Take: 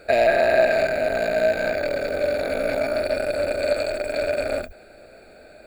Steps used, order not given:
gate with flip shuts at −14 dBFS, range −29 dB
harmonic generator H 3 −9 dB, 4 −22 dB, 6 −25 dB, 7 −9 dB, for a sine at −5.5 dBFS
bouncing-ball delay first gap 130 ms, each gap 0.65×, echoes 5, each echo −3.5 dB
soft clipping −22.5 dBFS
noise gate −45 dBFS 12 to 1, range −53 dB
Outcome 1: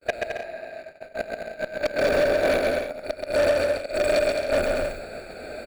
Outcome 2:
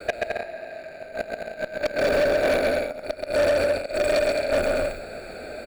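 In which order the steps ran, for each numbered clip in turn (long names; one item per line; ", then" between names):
gate with flip, then soft clipping, then bouncing-ball delay, then noise gate, then harmonic generator
gate with flip, then bouncing-ball delay, then soft clipping, then harmonic generator, then noise gate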